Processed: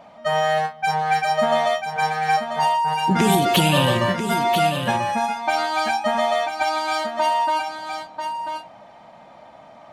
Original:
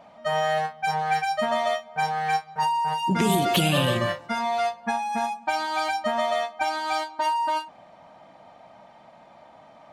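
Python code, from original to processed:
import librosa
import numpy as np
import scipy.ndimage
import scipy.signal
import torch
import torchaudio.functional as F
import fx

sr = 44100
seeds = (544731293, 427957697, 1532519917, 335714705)

y = x + 10.0 ** (-7.5 / 20.0) * np.pad(x, (int(990 * sr / 1000.0), 0))[:len(x)]
y = y * 10.0 ** (4.0 / 20.0)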